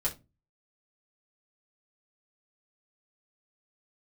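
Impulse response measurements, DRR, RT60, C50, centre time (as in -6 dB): -5.5 dB, not exponential, 15.5 dB, 12 ms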